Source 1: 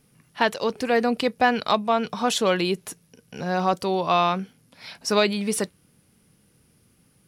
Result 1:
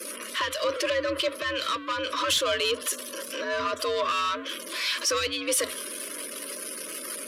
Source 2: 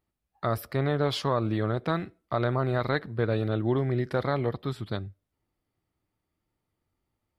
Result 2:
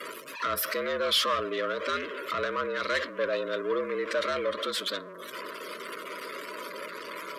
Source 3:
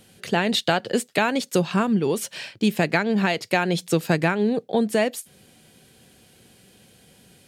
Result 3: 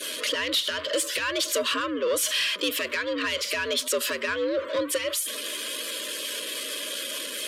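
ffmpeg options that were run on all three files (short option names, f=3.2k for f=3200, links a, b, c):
-af "aeval=exprs='val(0)+0.5*0.0447*sgn(val(0))':c=same,afftdn=nr=28:nf=-41,highpass=480,adynamicequalizer=threshold=0.00447:dfrequency=3100:dqfactor=4.4:tfrequency=3100:tqfactor=4.4:attack=5:release=100:ratio=0.375:range=3.5:mode=boostabove:tftype=bell,alimiter=limit=-12.5dB:level=0:latency=1:release=265,areverse,acompressor=mode=upward:threshold=-44dB:ratio=2.5,areverse,asoftclip=type=tanh:threshold=-22.5dB,afreqshift=80,asuperstop=centerf=790:order=12:qfactor=2.4,volume=3.5dB" -ar 32000 -c:a libvorbis -b:a 128k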